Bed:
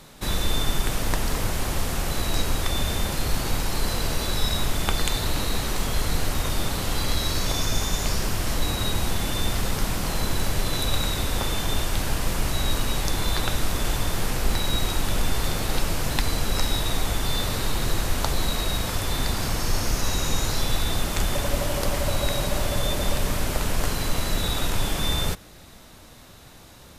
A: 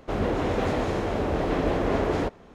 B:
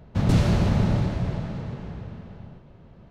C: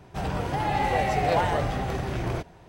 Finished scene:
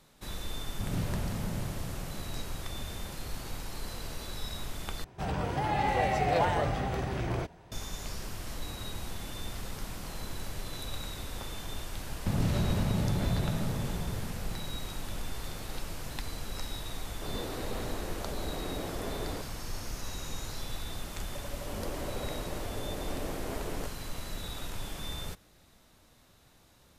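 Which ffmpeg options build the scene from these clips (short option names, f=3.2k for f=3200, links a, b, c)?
-filter_complex "[2:a]asplit=2[a][b];[1:a]asplit=2[c][d];[0:a]volume=-14dB[e];[a]adynamicsmooth=sensitivity=8:basefreq=2.1k[f];[b]acompressor=threshold=-24dB:ratio=6:attack=3.2:release=140:knee=1:detection=peak[g];[e]asplit=2[h][i];[h]atrim=end=5.044[j];[3:a]atrim=end=2.68,asetpts=PTS-STARTPTS,volume=-3.5dB[k];[i]atrim=start=7.716[l];[f]atrim=end=3.1,asetpts=PTS-STARTPTS,volume=-14dB,afade=t=in:d=0.004:c=hsin,afade=t=out:st=3.096:d=0.004:c=hsin,adelay=640[m];[g]atrim=end=3.1,asetpts=PTS-STARTPTS,volume=-1dB,afade=t=in:d=0.004:c=hsin,afade=t=out:st=3.096:d=0.004:c=hsin,adelay=12110[n];[c]atrim=end=2.54,asetpts=PTS-STARTPTS,volume=-13.5dB,afade=t=in:d=0.004:c=hsin,afade=t=out:st=2.536:d=0.004:c=hsin,adelay=17130[o];[d]atrim=end=2.54,asetpts=PTS-STARTPTS,volume=-14.5dB,afade=t=in:d=0.004:c=hsin,afade=t=out:st=2.536:d=0.004:c=hsin,adelay=21580[p];[j][k]acrossfade=d=0.004:c1=hsin:c2=hsin[q];[q][l]acrossfade=d=0.004:c1=hsin:c2=hsin[r];[r][m][n][o][p]amix=inputs=5:normalize=0"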